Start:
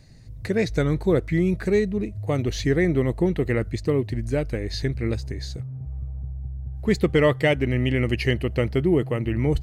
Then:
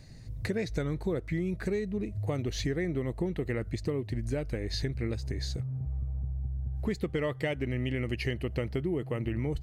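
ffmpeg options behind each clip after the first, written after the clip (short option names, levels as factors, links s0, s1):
-af "acompressor=threshold=0.0355:ratio=5"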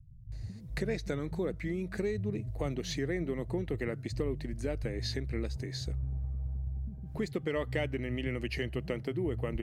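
-filter_complex "[0:a]acrossover=split=150[s0][s1];[s1]adelay=320[s2];[s0][s2]amix=inputs=2:normalize=0,volume=0.841"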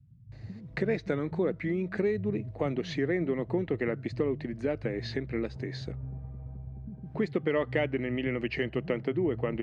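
-af "highpass=150,lowpass=2700,volume=1.88"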